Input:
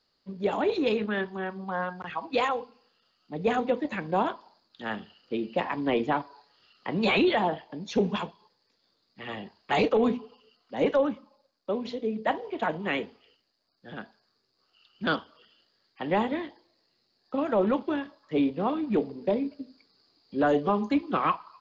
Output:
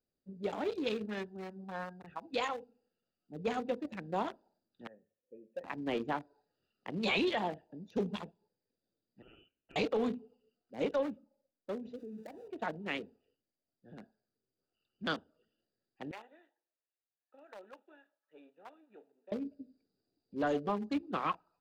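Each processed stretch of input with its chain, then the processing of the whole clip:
4.87–5.64 s: cascade formant filter e + treble shelf 2.8 kHz -8 dB + hum notches 50/100/150 Hz
9.22–9.76 s: peaking EQ 1.1 kHz -8 dB 2.3 oct + compression, threshold -34 dBFS + frequency inversion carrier 3.2 kHz
11.96–12.48 s: zero-crossing glitches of -24.5 dBFS + low-pass 2.2 kHz 6 dB/octave + compression 5:1, threshold -32 dBFS
16.11–19.32 s: partial rectifier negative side -3 dB + high-pass 1.2 kHz + peaking EQ 4.9 kHz -14 dB 0.52 oct
whole clip: local Wiener filter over 41 samples; treble shelf 3.9 kHz +11.5 dB; trim -8.5 dB

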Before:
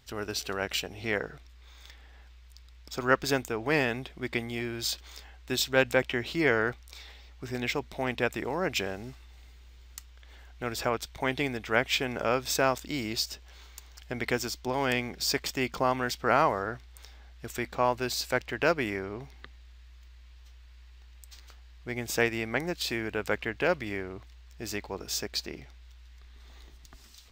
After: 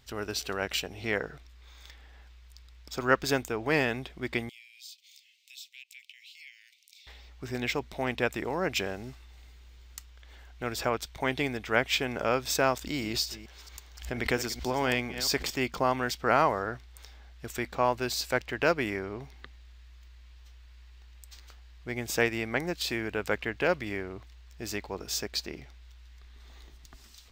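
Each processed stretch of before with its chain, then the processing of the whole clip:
4.49–7.07 s: steep high-pass 2.2 kHz 72 dB/octave + compression 2:1, threshold -57 dBFS
12.78–15.57 s: chunks repeated in reverse 227 ms, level -13.5 dB + swell ahead of each attack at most 120 dB/s
whole clip: none

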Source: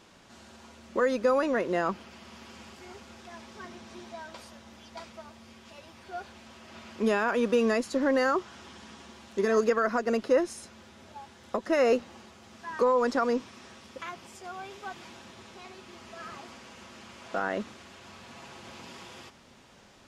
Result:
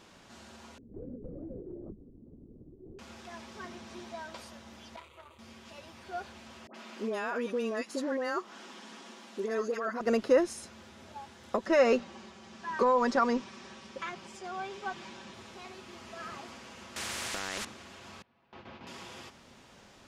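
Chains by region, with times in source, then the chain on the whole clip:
0.78–2.99 s: Chebyshev band-pass 130–420 Hz, order 3 + compression 4:1, threshold -42 dBFS + LPC vocoder at 8 kHz whisper
4.96–5.39 s: static phaser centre 1.1 kHz, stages 8 + doubling 28 ms -13 dB + transformer saturation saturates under 1.5 kHz
6.67–10.01 s: compression 1.5:1, threshold -42 dBFS + high-pass 200 Hz 24 dB/octave + phase dispersion highs, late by 76 ms, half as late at 1.2 kHz
11.66–15.34 s: low-pass 7.5 kHz + comb 5.2 ms, depth 49%
16.96–17.65 s: peaking EQ 1.8 kHz +12.5 dB 0.97 oct + compression 3:1, threshold -29 dBFS + spectrum-flattening compressor 4:1
18.22–18.87 s: gate with hold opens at -36 dBFS, closes at -39 dBFS + distance through air 280 m
whole clip: none

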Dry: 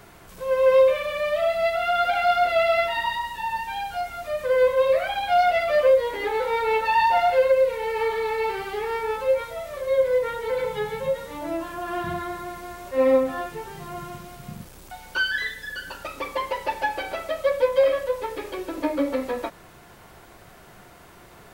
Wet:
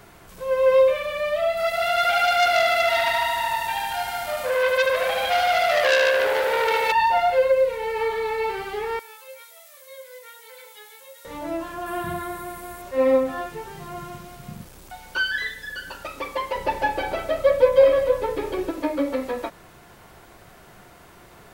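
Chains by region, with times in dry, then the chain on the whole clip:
1.57–6.92 s: treble shelf 4.7 kHz +10.5 dB + multi-head delay 74 ms, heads first and second, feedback 71%, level -6 dB + transformer saturation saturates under 2.8 kHz
8.99–11.25 s: high-pass 210 Hz 24 dB/octave + differentiator
11.86–12.82 s: resonant high shelf 7.6 kHz +6.5 dB, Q 1.5 + band-stop 880 Hz, Q 22
16.55–18.71 s: bass shelf 480 Hz +9.5 dB + delay 192 ms -10.5 dB
whole clip: none

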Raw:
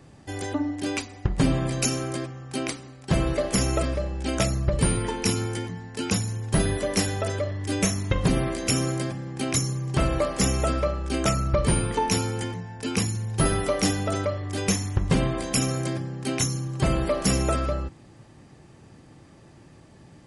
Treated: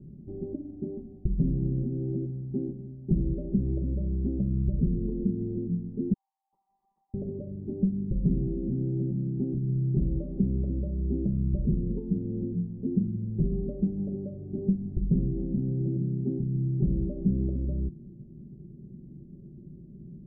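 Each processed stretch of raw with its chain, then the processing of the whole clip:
6.13–7.14 s: brick-wall FIR band-pass 760–2000 Hz + compression, threshold -40 dBFS
whole clip: compression, threshold -27 dBFS; inverse Chebyshev low-pass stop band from 1.4 kHz, stop band 70 dB; comb 5.2 ms, depth 81%; trim +4.5 dB

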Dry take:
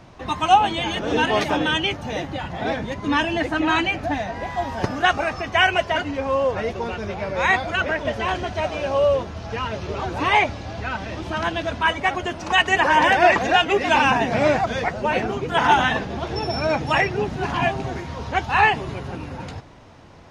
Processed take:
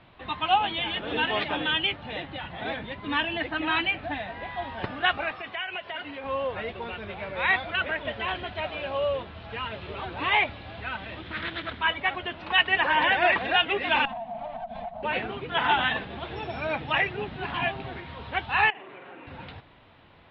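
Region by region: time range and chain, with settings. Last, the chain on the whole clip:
5.31–6.24 s: high-pass 62 Hz + bass shelf 160 Hz -11.5 dB + compression 5:1, threshold -25 dBFS
11.22–11.80 s: comb filter that takes the minimum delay 0.54 ms + high-pass 51 Hz + loudspeaker Doppler distortion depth 0.29 ms
14.05–15.03 s: comb filter that takes the minimum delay 4.5 ms + FFT filter 230 Hz 0 dB, 390 Hz -30 dB, 700 Hz +13 dB, 1.4 kHz -15 dB + compression 12:1, threshold -23 dBFS
18.70–19.27 s: Chebyshev band-pass 330–2200 Hz + flutter echo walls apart 8 m, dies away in 0.4 s + compression 5:1, threshold -32 dBFS
whole clip: steep low-pass 3.8 kHz 48 dB/octave; tilt shelf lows -5.5 dB, about 1.5 kHz; trim -5 dB

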